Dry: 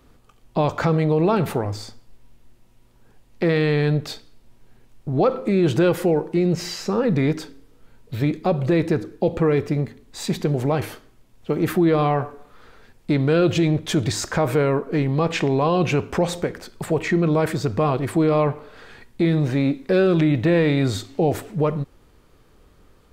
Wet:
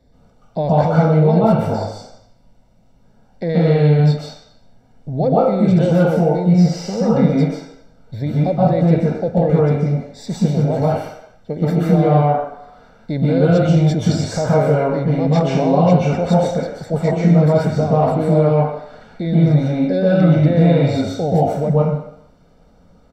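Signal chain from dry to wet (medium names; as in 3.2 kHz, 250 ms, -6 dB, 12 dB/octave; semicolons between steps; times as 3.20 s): comb 1.4 ms, depth 67%; reverberation RT60 0.75 s, pre-delay 122 ms, DRR -6.5 dB; trim -14.5 dB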